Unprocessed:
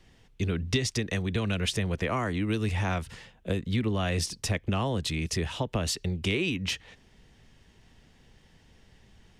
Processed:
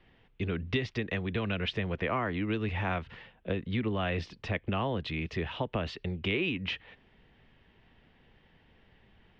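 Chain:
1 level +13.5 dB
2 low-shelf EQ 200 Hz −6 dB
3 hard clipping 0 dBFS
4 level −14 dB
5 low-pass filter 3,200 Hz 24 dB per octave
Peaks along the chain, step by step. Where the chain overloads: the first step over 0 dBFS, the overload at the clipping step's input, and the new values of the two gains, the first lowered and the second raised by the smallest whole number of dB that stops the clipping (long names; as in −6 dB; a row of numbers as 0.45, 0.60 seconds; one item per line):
−1.0, −2.0, −2.0, −16.0, −17.0 dBFS
no step passes full scale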